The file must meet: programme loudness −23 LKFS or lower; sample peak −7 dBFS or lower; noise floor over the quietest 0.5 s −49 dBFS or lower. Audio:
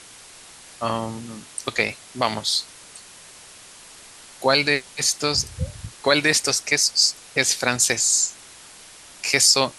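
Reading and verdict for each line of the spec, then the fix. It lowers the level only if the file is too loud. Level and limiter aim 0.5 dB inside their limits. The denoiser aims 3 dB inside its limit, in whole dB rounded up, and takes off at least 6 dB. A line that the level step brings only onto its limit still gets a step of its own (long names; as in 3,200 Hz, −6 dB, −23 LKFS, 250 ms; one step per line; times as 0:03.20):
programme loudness −20.0 LKFS: out of spec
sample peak −2.0 dBFS: out of spec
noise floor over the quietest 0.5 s −45 dBFS: out of spec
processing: broadband denoise 6 dB, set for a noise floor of −45 dBFS
level −3.5 dB
brickwall limiter −7.5 dBFS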